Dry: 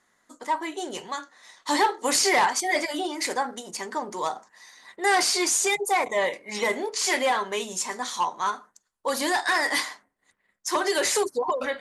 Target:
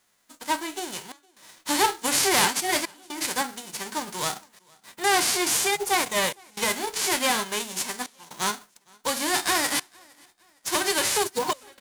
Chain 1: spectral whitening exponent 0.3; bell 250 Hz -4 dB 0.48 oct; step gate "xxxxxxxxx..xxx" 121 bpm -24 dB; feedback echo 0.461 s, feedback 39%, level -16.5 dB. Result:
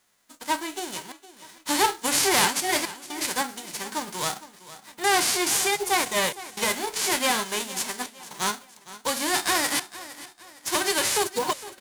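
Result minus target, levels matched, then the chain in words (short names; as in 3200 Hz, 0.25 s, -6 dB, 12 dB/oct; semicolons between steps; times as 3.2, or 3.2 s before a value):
echo-to-direct +12 dB
spectral whitening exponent 0.3; bell 250 Hz -4 dB 0.48 oct; step gate "xxxxxxxxx..xxx" 121 bpm -24 dB; feedback echo 0.461 s, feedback 39%, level -28.5 dB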